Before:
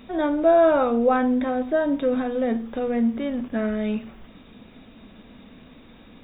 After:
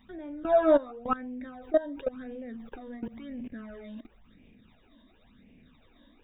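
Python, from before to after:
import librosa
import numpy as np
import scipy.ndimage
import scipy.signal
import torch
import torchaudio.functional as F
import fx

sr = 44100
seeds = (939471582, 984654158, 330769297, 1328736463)

y = fx.level_steps(x, sr, step_db=19)
y = fx.phaser_stages(y, sr, stages=12, low_hz=130.0, high_hz=1300.0, hz=0.95, feedback_pct=35)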